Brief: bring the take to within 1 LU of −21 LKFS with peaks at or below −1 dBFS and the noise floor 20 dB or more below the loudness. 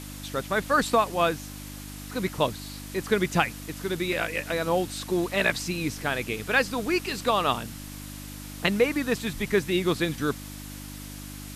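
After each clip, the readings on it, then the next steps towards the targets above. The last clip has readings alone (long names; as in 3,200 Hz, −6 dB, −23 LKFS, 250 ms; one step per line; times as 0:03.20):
mains hum 50 Hz; hum harmonics up to 300 Hz; level of the hum −39 dBFS; background noise floor −40 dBFS; target noise floor −47 dBFS; integrated loudness −26.5 LKFS; sample peak −7.5 dBFS; target loudness −21.0 LKFS
→ hum removal 50 Hz, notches 6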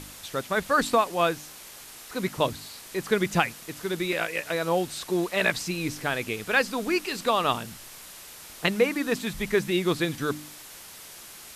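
mains hum none found; background noise floor −45 dBFS; target noise floor −47 dBFS
→ noise reduction from a noise print 6 dB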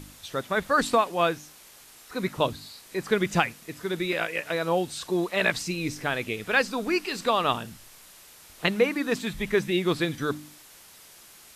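background noise floor −51 dBFS; integrated loudness −27.0 LKFS; sample peak −8.0 dBFS; target loudness −21.0 LKFS
→ level +6 dB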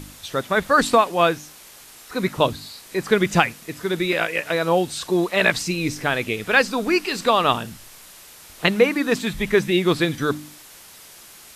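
integrated loudness −21.0 LKFS; sample peak −2.0 dBFS; background noise floor −45 dBFS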